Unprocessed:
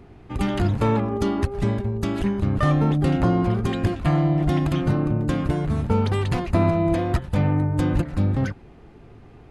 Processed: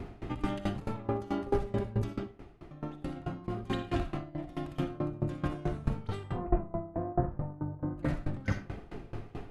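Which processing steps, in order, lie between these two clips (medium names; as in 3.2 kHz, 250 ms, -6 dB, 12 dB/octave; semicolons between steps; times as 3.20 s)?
6.23–7.98 s: low-pass 1.3 kHz 24 dB/octave; compressor with a negative ratio -30 dBFS, ratio -1; 2.13–2.71 s: room tone; reverberation RT60 0.60 s, pre-delay 20 ms, DRR 0.5 dB; sawtooth tremolo in dB decaying 4.6 Hz, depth 21 dB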